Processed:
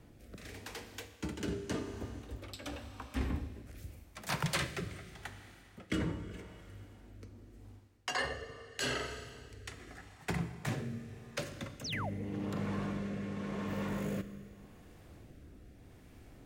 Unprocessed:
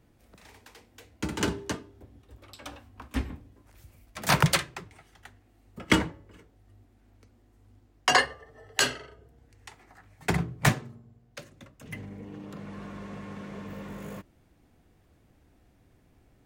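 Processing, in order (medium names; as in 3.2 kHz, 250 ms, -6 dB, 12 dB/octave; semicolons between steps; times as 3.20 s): reverse; compression 5:1, threshold -41 dBFS, peak gain reduction 22.5 dB; reverse; Schroeder reverb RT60 2.6 s, combs from 27 ms, DRR 9.5 dB; rotary cabinet horn 0.85 Hz; painted sound fall, 11.84–12.10 s, 500–6600 Hz -48 dBFS; trim +8 dB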